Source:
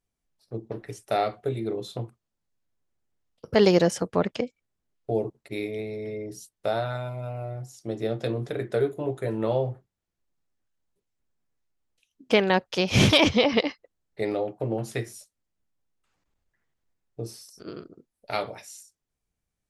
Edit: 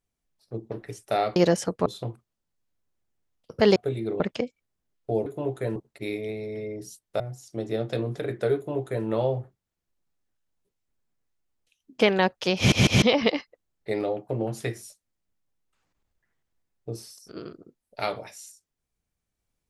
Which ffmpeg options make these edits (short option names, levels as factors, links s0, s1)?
-filter_complex "[0:a]asplit=11[s0][s1][s2][s3][s4][s5][s6][s7][s8][s9][s10];[s0]atrim=end=1.362[s11];[s1]atrim=start=3.698:end=4.202[s12];[s2]atrim=start=1.798:end=3.702[s13];[s3]atrim=start=1.358:end=1.802[s14];[s4]atrim=start=4.198:end=5.262[s15];[s5]atrim=start=8.868:end=9.372[s16];[s6]atrim=start=5.258:end=6.702[s17];[s7]atrim=start=7.508:end=13.032[s18];[s8]atrim=start=12.878:end=13.032[s19];[s9]atrim=start=12.878:end=13.032[s20];[s10]atrim=start=13.328[s21];[s11][s12]acrossfade=d=0.004:c1=hsin:c2=hsin[s22];[s22][s13]acrossfade=d=0.004:c1=hsin:c2=hsin[s23];[s23][s14]acrossfade=d=0.004:c1=hsin:c2=hsin[s24];[s24][s15]acrossfade=d=0.004:c1=hsin:c2=hsin[s25];[s25][s16]acrossfade=d=0.004:c1=hsin:c2=hsin[s26];[s26][s17]acrossfade=d=0.004:c1=hsin:c2=hsin[s27];[s27][s18]acrossfade=d=0.004:c1=hsin:c2=hsin[s28];[s28][s19]acrossfade=d=0.004:c1=hsin:c2=hsin[s29];[s29][s20]acrossfade=d=0.004:c1=hsin:c2=hsin[s30];[s30][s21]acrossfade=d=0.004:c1=hsin:c2=hsin"